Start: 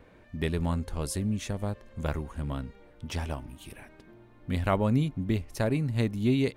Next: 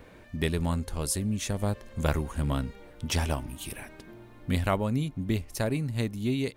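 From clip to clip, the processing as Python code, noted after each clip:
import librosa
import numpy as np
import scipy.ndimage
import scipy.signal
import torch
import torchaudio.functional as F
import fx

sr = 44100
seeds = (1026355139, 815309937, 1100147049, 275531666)

y = fx.high_shelf(x, sr, hz=4500.0, db=8.5)
y = fx.rider(y, sr, range_db=5, speed_s=0.5)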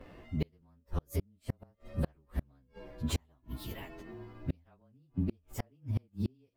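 y = fx.partial_stretch(x, sr, pct=108)
y = fx.high_shelf(y, sr, hz=2600.0, db=-10.0)
y = fx.gate_flip(y, sr, shuts_db=-24.0, range_db=-38)
y = y * 10.0 ** (3.5 / 20.0)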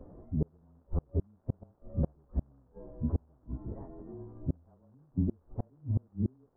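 y = fx.dmg_crackle(x, sr, seeds[0], per_s=580.0, level_db=-50.0)
y = scipy.ndimage.gaussian_filter1d(y, 9.9, mode='constant')
y = y * 10.0 ** (3.0 / 20.0)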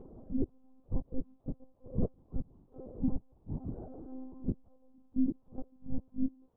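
y = fx.partial_stretch(x, sr, pct=89)
y = fx.lpc_monotone(y, sr, seeds[1], pitch_hz=260.0, order=10)
y = y * 10.0 ** (3.0 / 20.0)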